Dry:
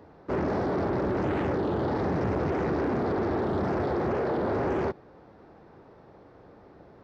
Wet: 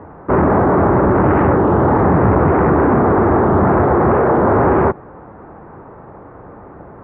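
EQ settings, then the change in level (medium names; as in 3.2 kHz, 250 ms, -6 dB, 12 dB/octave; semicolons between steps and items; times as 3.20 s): low-pass 2.3 kHz 24 dB/octave; bass shelf 370 Hz +10.5 dB; peaking EQ 1.1 kHz +11.5 dB 1.5 oct; +6.5 dB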